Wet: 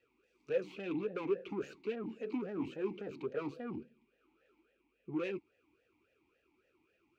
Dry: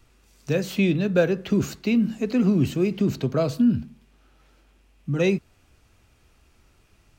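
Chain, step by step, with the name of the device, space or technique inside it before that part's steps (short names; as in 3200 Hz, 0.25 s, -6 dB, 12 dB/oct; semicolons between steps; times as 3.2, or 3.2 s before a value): talk box (tube stage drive 27 dB, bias 0.65; vowel sweep e-u 3.6 Hz); gain +4 dB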